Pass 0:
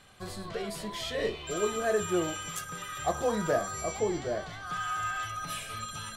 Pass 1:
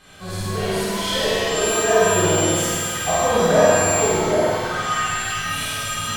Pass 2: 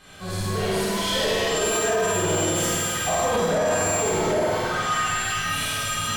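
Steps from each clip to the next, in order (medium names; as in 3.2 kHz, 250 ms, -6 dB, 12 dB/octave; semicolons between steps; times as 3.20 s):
reverse; upward compressor, threshold -43 dBFS; reverse; flutter echo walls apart 8.6 m, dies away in 1.3 s; pitch-shifted reverb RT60 1.3 s, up +7 st, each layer -8 dB, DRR -9 dB
peak limiter -11 dBFS, peak gain reduction 8.5 dB; saturation -16 dBFS, distortion -17 dB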